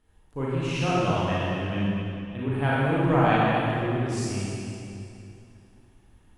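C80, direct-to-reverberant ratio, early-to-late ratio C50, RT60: -3.0 dB, -8.5 dB, -5.5 dB, 2.8 s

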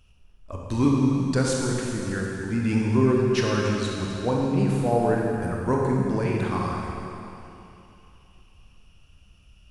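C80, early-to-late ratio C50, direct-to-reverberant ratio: 0.5 dB, -1.0 dB, -2.0 dB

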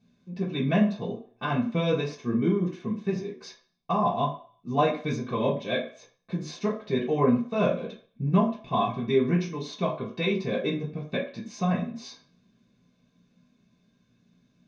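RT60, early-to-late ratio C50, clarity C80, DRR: 0.45 s, 8.5 dB, 12.5 dB, -7.5 dB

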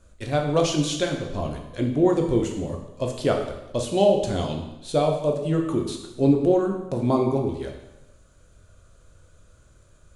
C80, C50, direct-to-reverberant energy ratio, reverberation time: 8.0 dB, 6.0 dB, 1.5 dB, 0.95 s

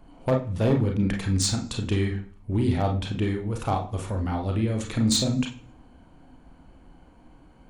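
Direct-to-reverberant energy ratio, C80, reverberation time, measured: 1.5 dB, 14.5 dB, 0.40 s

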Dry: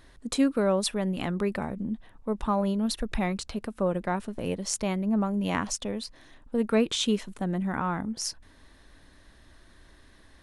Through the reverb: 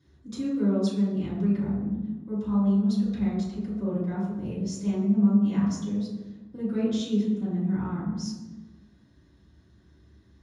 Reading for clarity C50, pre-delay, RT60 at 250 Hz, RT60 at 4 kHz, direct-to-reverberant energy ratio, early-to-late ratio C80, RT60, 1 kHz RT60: -0.5 dB, 3 ms, n/a, 0.80 s, -12.0 dB, 3.5 dB, 1.3 s, 1.1 s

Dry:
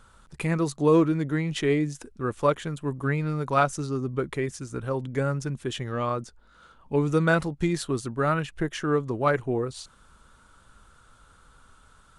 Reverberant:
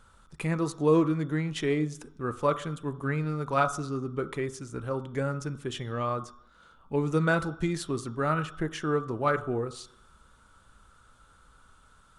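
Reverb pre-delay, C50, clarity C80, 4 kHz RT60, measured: 3 ms, 14.5 dB, 17.5 dB, 0.65 s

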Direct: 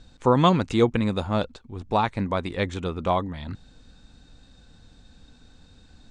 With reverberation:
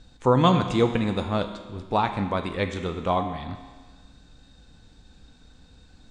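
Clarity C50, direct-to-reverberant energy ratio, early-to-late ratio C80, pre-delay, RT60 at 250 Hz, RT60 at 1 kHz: 8.5 dB, 6.0 dB, 10.0 dB, 7 ms, 1.4 s, 1.4 s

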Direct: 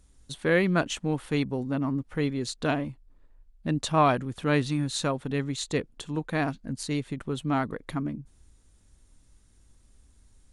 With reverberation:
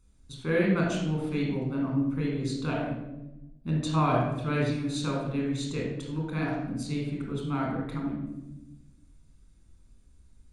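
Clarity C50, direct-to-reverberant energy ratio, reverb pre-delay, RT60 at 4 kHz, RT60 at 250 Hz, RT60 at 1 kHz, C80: 1.5 dB, -2.5 dB, 25 ms, 0.60 s, 1.5 s, 0.85 s, 4.5 dB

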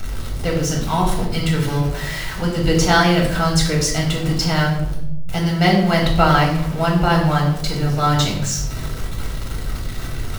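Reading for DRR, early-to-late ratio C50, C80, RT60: -1.5 dB, 5.5 dB, 8.0 dB, 0.85 s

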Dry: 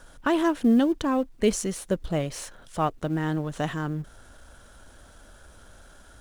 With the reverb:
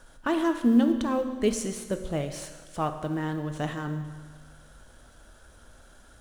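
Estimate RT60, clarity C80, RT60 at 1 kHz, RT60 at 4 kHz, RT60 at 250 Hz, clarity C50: 1.5 s, 10.5 dB, 1.5 s, 1.5 s, 1.5 s, 9.0 dB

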